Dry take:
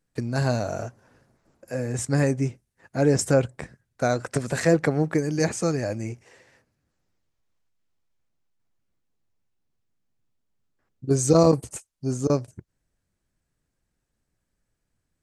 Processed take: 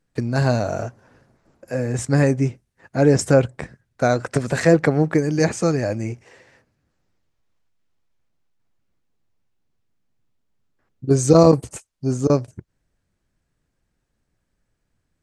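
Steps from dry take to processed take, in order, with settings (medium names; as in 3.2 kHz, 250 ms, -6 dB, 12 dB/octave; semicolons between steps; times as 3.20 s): treble shelf 7.9 kHz -9.5 dB; trim +5 dB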